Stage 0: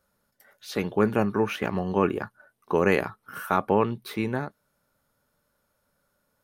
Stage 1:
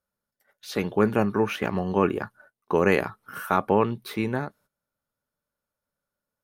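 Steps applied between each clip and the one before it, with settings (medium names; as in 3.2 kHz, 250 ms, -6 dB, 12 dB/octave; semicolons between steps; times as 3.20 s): gate -55 dBFS, range -15 dB; trim +1 dB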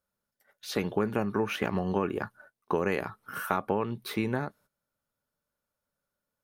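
compression 5:1, threshold -24 dBFS, peak gain reduction 9 dB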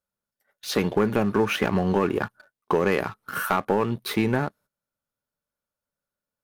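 waveshaping leveller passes 2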